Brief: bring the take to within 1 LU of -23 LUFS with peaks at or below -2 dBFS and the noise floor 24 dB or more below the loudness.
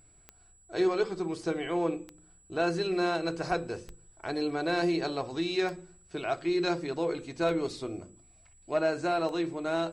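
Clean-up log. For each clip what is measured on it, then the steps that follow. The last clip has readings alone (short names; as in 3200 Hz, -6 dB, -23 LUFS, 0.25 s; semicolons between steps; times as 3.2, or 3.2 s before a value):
clicks 6; steady tone 7800 Hz; tone level -60 dBFS; loudness -31.0 LUFS; peak -17.0 dBFS; loudness target -23.0 LUFS
-> de-click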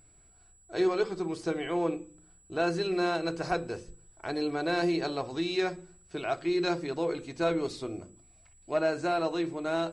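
clicks 0; steady tone 7800 Hz; tone level -60 dBFS
-> notch 7800 Hz, Q 30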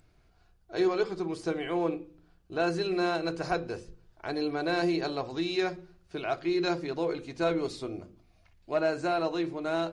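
steady tone none; loudness -31.0 LUFS; peak -17.0 dBFS; loudness target -23.0 LUFS
-> gain +8 dB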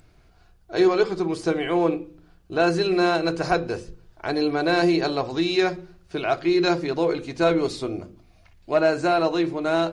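loudness -23.0 LUFS; peak -9.0 dBFS; noise floor -56 dBFS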